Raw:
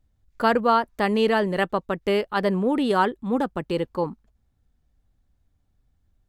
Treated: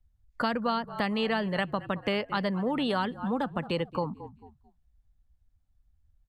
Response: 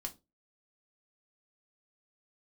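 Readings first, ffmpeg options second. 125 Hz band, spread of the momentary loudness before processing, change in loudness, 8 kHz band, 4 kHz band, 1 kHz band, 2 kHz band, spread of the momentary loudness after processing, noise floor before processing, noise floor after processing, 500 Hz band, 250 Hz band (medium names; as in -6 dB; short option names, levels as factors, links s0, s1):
-3.0 dB, 7 LU, -6.5 dB, no reading, -2.0 dB, -8.0 dB, -5.5 dB, 5 LU, -69 dBFS, -70 dBFS, -8.5 dB, -5.5 dB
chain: -filter_complex "[0:a]asplit=4[s0][s1][s2][s3];[s1]adelay=220,afreqshift=-39,volume=0.1[s4];[s2]adelay=440,afreqshift=-78,volume=0.0422[s5];[s3]adelay=660,afreqshift=-117,volume=0.0176[s6];[s0][s4][s5][s6]amix=inputs=4:normalize=0,asplit=2[s7][s8];[s8]acompressor=threshold=0.0355:ratio=6,volume=0.841[s9];[s7][s9]amix=inputs=2:normalize=0,equalizer=f=380:w=1.9:g=-9.5,afftdn=nr=14:nf=-44,adynamicequalizer=threshold=0.002:dfrequency=7600:dqfactor=2.3:tfrequency=7600:tqfactor=2.3:attack=5:release=100:ratio=0.375:range=1.5:mode=cutabove:tftype=bell,aresample=32000,aresample=44100,acrossover=split=89|410|2700[s10][s11][s12][s13];[s10]acompressor=threshold=0.001:ratio=4[s14];[s11]acompressor=threshold=0.0282:ratio=4[s15];[s12]acompressor=threshold=0.0316:ratio=4[s16];[s13]acompressor=threshold=0.0141:ratio=4[s17];[s14][s15][s16][s17]amix=inputs=4:normalize=0"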